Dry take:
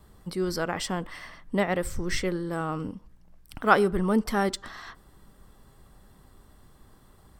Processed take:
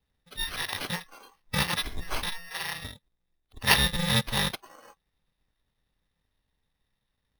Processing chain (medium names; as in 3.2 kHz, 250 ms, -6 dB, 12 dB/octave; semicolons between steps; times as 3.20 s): bit-reversed sample order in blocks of 128 samples; spectral noise reduction 22 dB; 1.06–1.75 s: ten-band graphic EQ 1 kHz +8 dB, 2 kHz +7 dB, 4 kHz +6 dB, 8 kHz -6 dB; careless resampling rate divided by 6×, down none, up hold; trim -1.5 dB